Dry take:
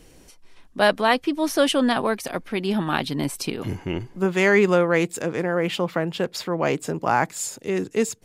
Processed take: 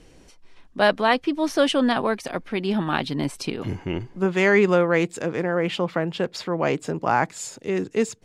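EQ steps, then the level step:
high-frequency loss of the air 54 metres
0.0 dB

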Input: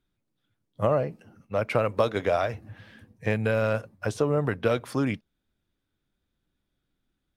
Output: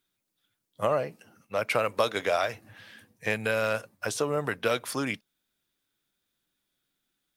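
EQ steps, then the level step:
spectral tilt +3 dB per octave
parametric band 70 Hz −9 dB 0.45 octaves
0.0 dB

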